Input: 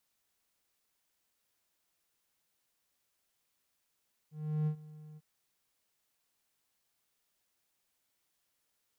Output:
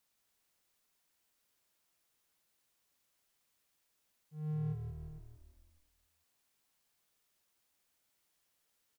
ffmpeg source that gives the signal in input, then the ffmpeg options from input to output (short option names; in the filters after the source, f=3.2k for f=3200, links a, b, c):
-f lavfi -i "aevalsrc='0.0531*(1-4*abs(mod(153*t+0.25,1)-0.5))':d=0.898:s=44100,afade=t=in:d=0.358,afade=t=out:st=0.358:d=0.088:silence=0.0944,afade=t=out:st=0.86:d=0.038"
-filter_complex "[0:a]alimiter=level_in=7dB:limit=-24dB:level=0:latency=1:release=29,volume=-7dB,asplit=7[a][b][c][d][e][f][g];[b]adelay=174,afreqshift=-39,volume=-7dB[h];[c]adelay=348,afreqshift=-78,volume=-12.5dB[i];[d]adelay=522,afreqshift=-117,volume=-18dB[j];[e]adelay=696,afreqshift=-156,volume=-23.5dB[k];[f]adelay=870,afreqshift=-195,volume=-29.1dB[l];[g]adelay=1044,afreqshift=-234,volume=-34.6dB[m];[a][h][i][j][k][l][m]amix=inputs=7:normalize=0"